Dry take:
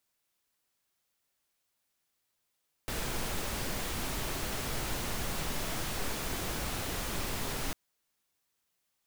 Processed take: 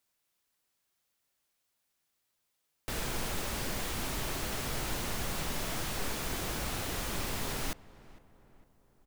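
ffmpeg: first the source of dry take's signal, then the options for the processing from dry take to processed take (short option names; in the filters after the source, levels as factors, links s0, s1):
-f lavfi -i "anoisesrc=c=pink:a=0.0966:d=4.85:r=44100:seed=1"
-filter_complex "[0:a]asplit=2[s0][s1];[s1]adelay=455,lowpass=f=1800:p=1,volume=0.106,asplit=2[s2][s3];[s3]adelay=455,lowpass=f=1800:p=1,volume=0.53,asplit=2[s4][s5];[s5]adelay=455,lowpass=f=1800:p=1,volume=0.53,asplit=2[s6][s7];[s7]adelay=455,lowpass=f=1800:p=1,volume=0.53[s8];[s0][s2][s4][s6][s8]amix=inputs=5:normalize=0"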